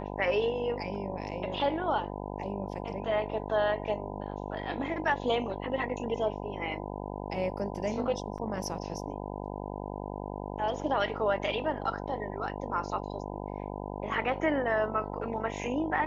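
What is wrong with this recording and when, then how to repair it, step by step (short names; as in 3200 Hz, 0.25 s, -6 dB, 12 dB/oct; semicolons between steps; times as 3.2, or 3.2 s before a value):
buzz 50 Hz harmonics 20 -38 dBFS
8.38 gap 4.5 ms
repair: de-hum 50 Hz, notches 20; interpolate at 8.38, 4.5 ms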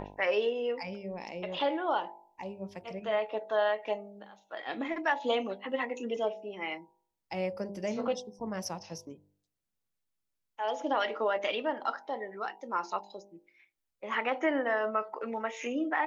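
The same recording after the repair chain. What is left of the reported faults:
none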